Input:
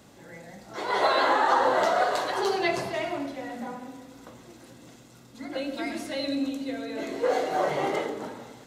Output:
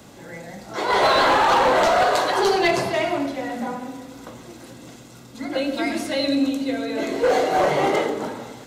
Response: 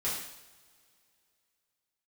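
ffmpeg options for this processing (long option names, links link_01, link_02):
-filter_complex "[0:a]bandreject=frequency=1800:width=26,acrossover=split=220|3600[link_01][link_02][link_03];[link_02]asoftclip=type=hard:threshold=-22dB[link_04];[link_01][link_04][link_03]amix=inputs=3:normalize=0,volume=8dB"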